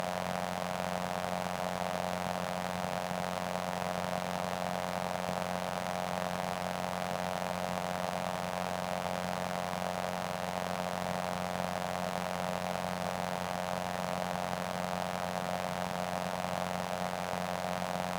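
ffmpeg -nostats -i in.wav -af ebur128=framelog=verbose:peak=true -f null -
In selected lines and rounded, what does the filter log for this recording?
Integrated loudness:
  I:         -35.4 LUFS
  Threshold: -45.3 LUFS
Loudness range:
  LRA:         0.2 LU
  Threshold: -55.3 LUFS
  LRA low:   -35.4 LUFS
  LRA high:  -35.3 LUFS
True peak:
  Peak:      -16.5 dBFS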